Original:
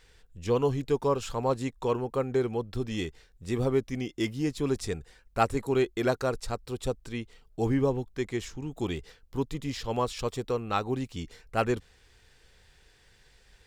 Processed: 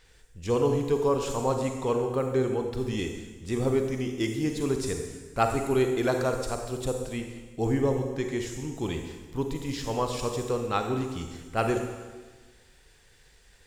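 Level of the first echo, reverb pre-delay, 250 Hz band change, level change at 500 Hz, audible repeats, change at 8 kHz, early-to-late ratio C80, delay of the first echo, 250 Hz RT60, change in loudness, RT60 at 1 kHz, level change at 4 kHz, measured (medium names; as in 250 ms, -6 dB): no echo, 35 ms, +2.0 dB, +2.0 dB, no echo, +5.0 dB, 7.5 dB, no echo, 1.5 s, +2.0 dB, 1.3 s, +1.0 dB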